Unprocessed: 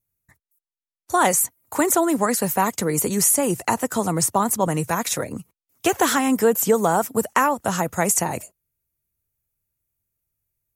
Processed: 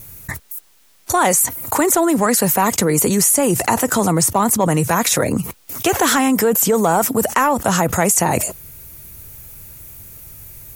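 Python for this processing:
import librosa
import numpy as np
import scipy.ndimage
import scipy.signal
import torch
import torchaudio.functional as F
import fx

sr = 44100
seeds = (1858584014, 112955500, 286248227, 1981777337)

p1 = np.clip(10.0 ** (14.5 / 20.0) * x, -1.0, 1.0) / 10.0 ** (14.5 / 20.0)
p2 = x + (p1 * librosa.db_to_amplitude(-10.5))
p3 = fx.env_flatten(p2, sr, amount_pct=70)
y = p3 * librosa.db_to_amplitude(-1.5)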